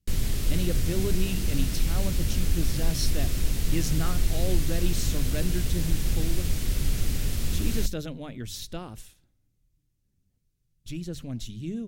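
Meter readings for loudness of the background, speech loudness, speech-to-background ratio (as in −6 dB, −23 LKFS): −30.0 LKFS, −34.5 LKFS, −4.5 dB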